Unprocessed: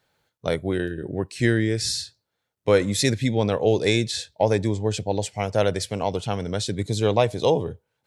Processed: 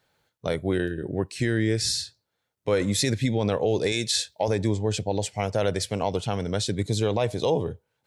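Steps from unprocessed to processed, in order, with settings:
0:03.92–0:04.48: spectral tilt +2 dB per octave
brickwall limiter −13 dBFS, peak gain reduction 8 dB

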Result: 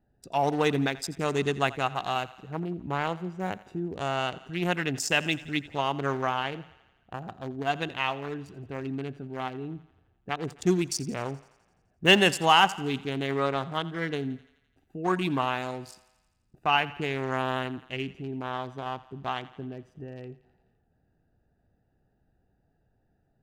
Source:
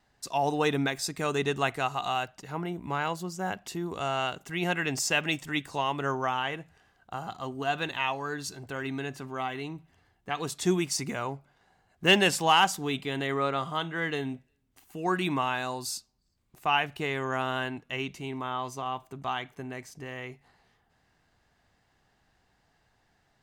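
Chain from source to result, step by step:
adaptive Wiener filter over 41 samples
on a send: feedback echo with a high-pass in the loop 85 ms, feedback 63%, high-pass 430 Hz, level −18 dB
on the sum: level +2.5 dB

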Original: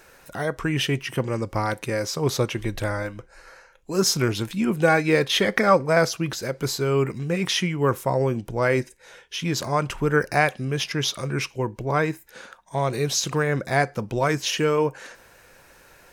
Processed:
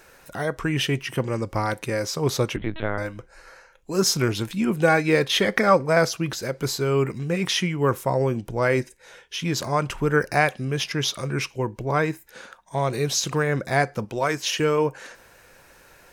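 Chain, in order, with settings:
0:02.56–0:02.98: linear-prediction vocoder at 8 kHz pitch kept
0:14.05–0:14.60: low-shelf EQ 220 Hz −9.5 dB

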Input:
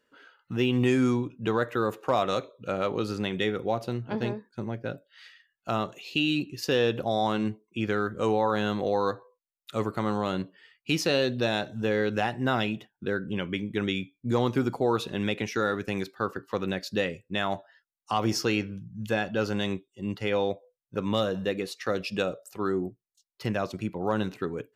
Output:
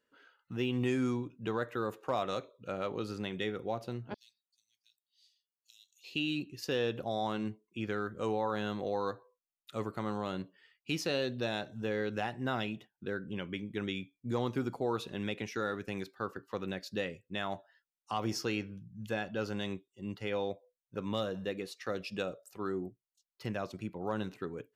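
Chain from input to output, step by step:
0:04.14–0:06.04: inverse Chebyshev high-pass filter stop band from 1,300 Hz, stop band 60 dB
level −8 dB

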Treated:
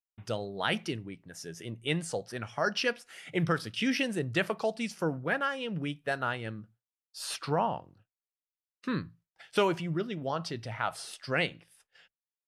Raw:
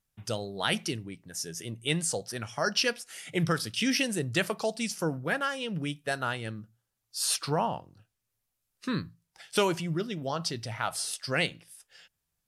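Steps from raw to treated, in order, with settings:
downward expander −51 dBFS
bass and treble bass −2 dB, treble −12 dB

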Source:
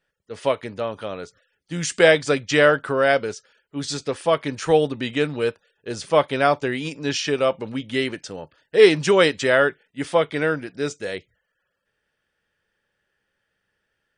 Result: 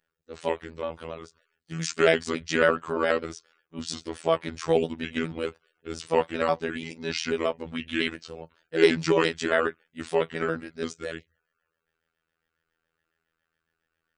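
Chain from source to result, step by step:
pitch shifter gated in a rhythm −3 semitones, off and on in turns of 69 ms
gain on a spectral selection 0:07.74–0:08.11, 1,000–4,100 Hz +6 dB
phases set to zero 81.8 Hz
level −3 dB

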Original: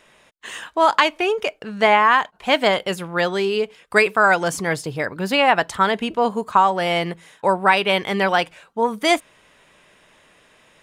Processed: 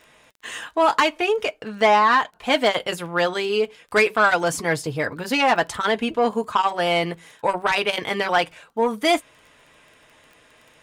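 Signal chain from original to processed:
soft clipping −9.5 dBFS, distortion −15 dB
notch comb filter 190 Hz
surface crackle 15 per second −39 dBFS
level +1.5 dB

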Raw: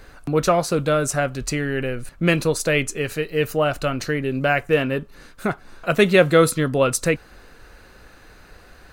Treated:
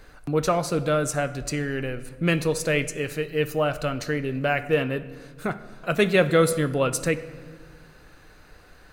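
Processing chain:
rectangular room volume 1,600 cubic metres, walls mixed, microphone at 0.45 metres
level −4.5 dB

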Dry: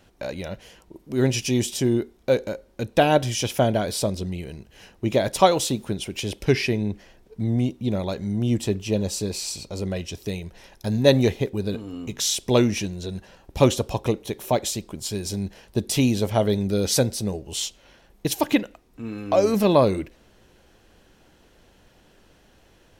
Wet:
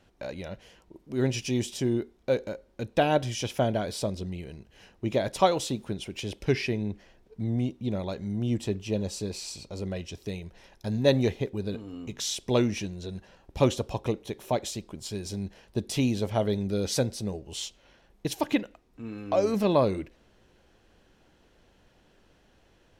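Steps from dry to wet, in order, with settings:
high-shelf EQ 9,500 Hz −10.5 dB
level −5.5 dB

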